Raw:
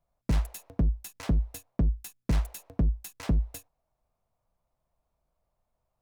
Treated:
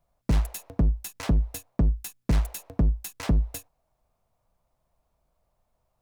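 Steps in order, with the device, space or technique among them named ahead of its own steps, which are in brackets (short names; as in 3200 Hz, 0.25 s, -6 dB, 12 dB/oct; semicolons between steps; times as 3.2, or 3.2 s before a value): parallel distortion (in parallel at -4.5 dB: hard clip -31 dBFS, distortion -8 dB); on the sum: gain +1.5 dB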